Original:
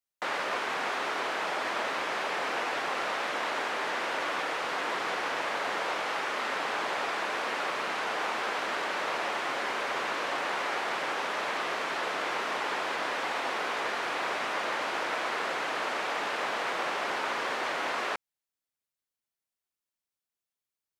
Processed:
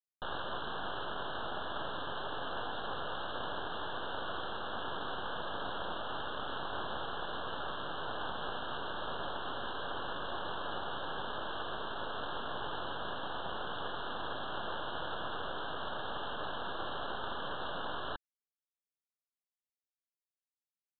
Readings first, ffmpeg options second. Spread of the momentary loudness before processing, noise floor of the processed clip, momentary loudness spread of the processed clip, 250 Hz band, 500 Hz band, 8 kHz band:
0 LU, below −85 dBFS, 1 LU, −4.5 dB, −7.5 dB, below −35 dB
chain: -af "aresample=8000,acrusher=bits=4:dc=4:mix=0:aa=0.000001,aresample=44100,asuperstop=centerf=2200:order=12:qfactor=1.9,volume=-2.5dB"

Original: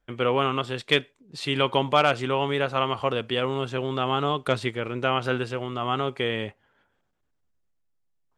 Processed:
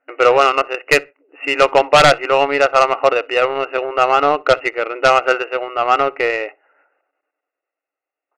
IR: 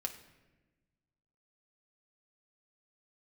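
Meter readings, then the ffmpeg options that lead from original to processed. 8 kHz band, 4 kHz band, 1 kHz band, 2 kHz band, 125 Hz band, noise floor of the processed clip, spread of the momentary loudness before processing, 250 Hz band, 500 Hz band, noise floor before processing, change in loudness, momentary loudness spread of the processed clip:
can't be measured, +5.5 dB, +11.5 dB, +12.0 dB, −3.5 dB, below −85 dBFS, 8 LU, +1.5 dB, +11.0 dB, −73 dBFS, +10.5 dB, 9 LU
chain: -filter_complex "[0:a]afftfilt=real='re*between(b*sr/4096,270,2900)':imag='im*between(b*sr/4096,270,2900)':win_size=4096:overlap=0.75,aecho=1:1:1.5:0.54,aeval=exprs='0.501*sin(PI/2*2.24*val(0)/0.501)':channel_layout=same,aeval=exprs='0.501*(cos(1*acos(clip(val(0)/0.501,-1,1)))-cos(1*PI/2))+0.0794*(cos(3*acos(clip(val(0)/0.501,-1,1)))-cos(3*PI/2))':channel_layout=same,asplit=2[link_01][link_02];[link_02]adelay=63,lowpass=frequency=1400:poles=1,volume=-23dB,asplit=2[link_03][link_04];[link_04]adelay=63,lowpass=frequency=1400:poles=1,volume=0.23[link_05];[link_03][link_05]amix=inputs=2:normalize=0[link_06];[link_01][link_06]amix=inputs=2:normalize=0,volume=3dB"

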